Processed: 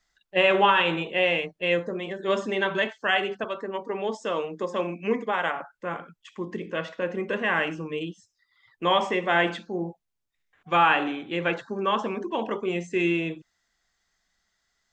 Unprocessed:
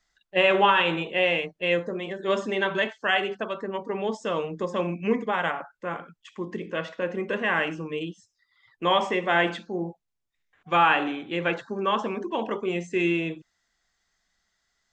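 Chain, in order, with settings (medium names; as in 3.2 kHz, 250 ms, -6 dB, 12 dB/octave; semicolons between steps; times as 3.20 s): 3.44–5.56 s: high-pass 230 Hz 12 dB/octave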